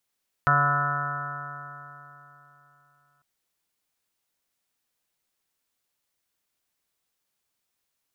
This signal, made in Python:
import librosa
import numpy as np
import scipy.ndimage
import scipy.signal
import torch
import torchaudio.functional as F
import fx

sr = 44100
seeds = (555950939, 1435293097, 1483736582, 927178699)

y = fx.additive_stiff(sr, length_s=2.75, hz=142.0, level_db=-24.0, upper_db=(-17.5, -19.0, -11.5, -3.5, -19.5, -2.5, -8.0, 4.5, 1, -17, -8.5), decay_s=3.32, stiffness=0.00052)